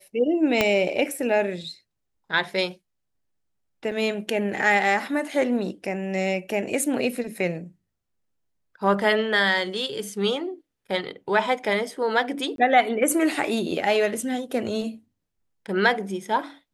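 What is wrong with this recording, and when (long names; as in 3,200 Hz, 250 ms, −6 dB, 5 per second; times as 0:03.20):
0:00.61: click −5 dBFS
0:03.91–0:03.92: drop-out 5.5 ms
0:12.56–0:12.58: drop-out 22 ms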